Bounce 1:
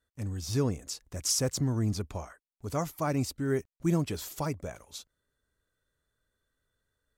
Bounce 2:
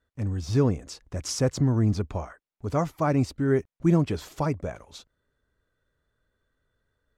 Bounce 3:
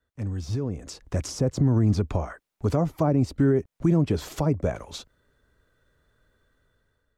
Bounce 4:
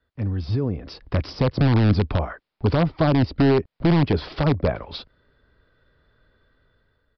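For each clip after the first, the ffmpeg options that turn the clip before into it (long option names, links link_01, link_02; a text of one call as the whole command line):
ffmpeg -i in.wav -af "aemphasis=mode=reproduction:type=75fm,volume=5.5dB" out.wav
ffmpeg -i in.wav -filter_complex "[0:a]acrossover=split=250|760[link_01][link_02][link_03];[link_03]acompressor=threshold=-43dB:ratio=6[link_04];[link_01][link_02][link_04]amix=inputs=3:normalize=0,alimiter=limit=-21.5dB:level=0:latency=1:release=196,dynaudnorm=framelen=370:gausssize=5:maxgain=10.5dB,volume=-1.5dB" out.wav
ffmpeg -i in.wav -filter_complex "[0:a]asplit=2[link_01][link_02];[link_02]aeval=exprs='(mod(5.31*val(0)+1,2)-1)/5.31':channel_layout=same,volume=-6.5dB[link_03];[link_01][link_03]amix=inputs=2:normalize=0,aresample=11025,aresample=44100,volume=1.5dB" out.wav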